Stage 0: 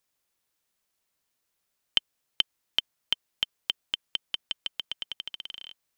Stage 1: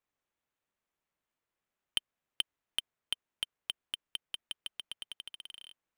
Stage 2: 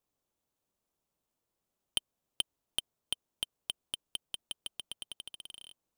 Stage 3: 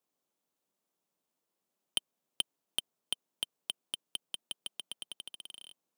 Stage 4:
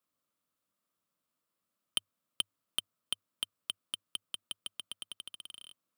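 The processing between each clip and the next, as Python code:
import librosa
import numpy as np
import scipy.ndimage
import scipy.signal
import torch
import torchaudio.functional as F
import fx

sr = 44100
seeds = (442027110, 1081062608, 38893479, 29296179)

y1 = scipy.ndimage.median_filter(x, 9, mode='constant')
y1 = y1 * 10.0 ** (-4.5 / 20.0)
y2 = fx.peak_eq(y1, sr, hz=1900.0, db=-12.5, octaves=1.5)
y2 = y2 * 10.0 ** (6.0 / 20.0)
y3 = scipy.signal.sosfilt(scipy.signal.butter(4, 160.0, 'highpass', fs=sr, output='sos'), y2)
y4 = fx.graphic_eq_31(y3, sr, hz=(100, 400, 800, 1250, 6300), db=(11, -10, -10, 8, -5))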